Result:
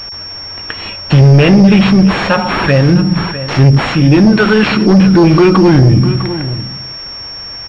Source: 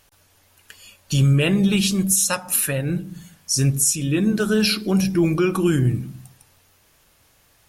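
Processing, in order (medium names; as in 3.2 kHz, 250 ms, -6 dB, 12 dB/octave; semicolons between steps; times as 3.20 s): 4.32–4.72 s: tilt EQ +2.5 dB/octave; in parallel at -1 dB: compression, threshold -26 dBFS, peak gain reduction 13 dB; on the sum: sine folder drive 7 dB, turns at -4.5 dBFS; on a send: delay 653 ms -17.5 dB; on the sum: loudness maximiser +8.5 dB; class-D stage that switches slowly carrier 5.5 kHz; trim -1 dB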